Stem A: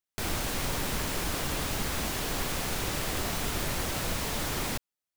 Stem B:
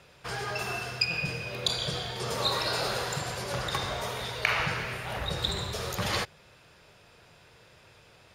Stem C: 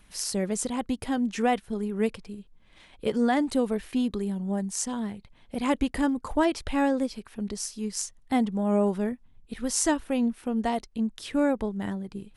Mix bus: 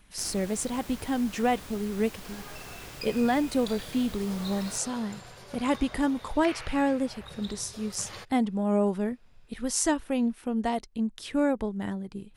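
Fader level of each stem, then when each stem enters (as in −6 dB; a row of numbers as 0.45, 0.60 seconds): −13.0, −13.5, −1.0 decibels; 0.00, 2.00, 0.00 seconds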